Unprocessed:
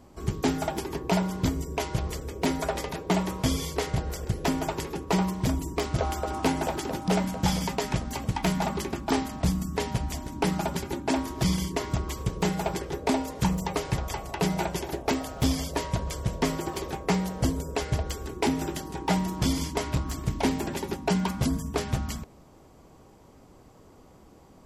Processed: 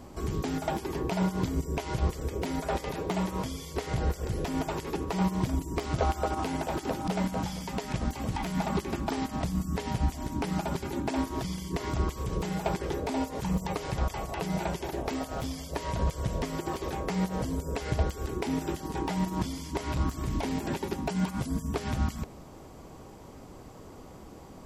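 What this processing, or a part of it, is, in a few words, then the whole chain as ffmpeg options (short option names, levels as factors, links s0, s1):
de-esser from a sidechain: -filter_complex "[0:a]asettb=1/sr,asplit=3[s0][s1][s2];[s0]atrim=end=21.084[s3];[s1]atrim=start=21.08:end=21.54,asetpts=PTS-STARTPTS,afade=t=in:d=0.004:c=qsin,afade=t=out:st=0.456:d=0.004:c=qsin,equalizer=f=9300:t=o:w=0.77:g=5[s4];[s2]atrim=start=21.536[s5];[s3][s4]acrossfade=d=0.004:c1=hsin:c2=qsin[s6];[s6][s5]acrossfade=d=0.004:c1=qsin:c2=hsin,asplit=2[s7][s8];[s8]highpass=f=6200:w=0.5412,highpass=f=6200:w=1.3066,apad=whole_len=1087157[s9];[s7][s9]sidechaincompress=threshold=0.00158:ratio=4:attack=1.5:release=50,volume=2"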